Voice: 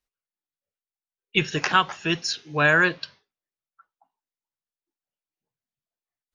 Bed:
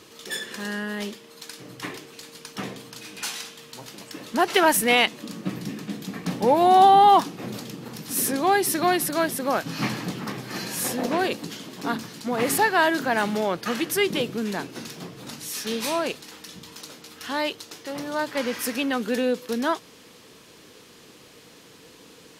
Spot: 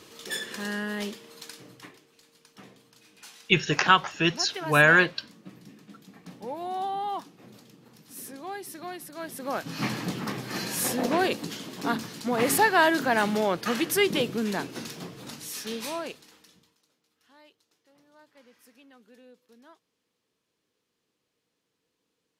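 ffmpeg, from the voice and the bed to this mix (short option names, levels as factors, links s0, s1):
-filter_complex "[0:a]adelay=2150,volume=1.06[s0];[1:a]volume=5.62,afade=t=out:st=1.34:d=0.58:silence=0.16788,afade=t=in:st=9.15:d=0.98:silence=0.149624,afade=t=out:st=14.77:d=2:silence=0.0334965[s1];[s0][s1]amix=inputs=2:normalize=0"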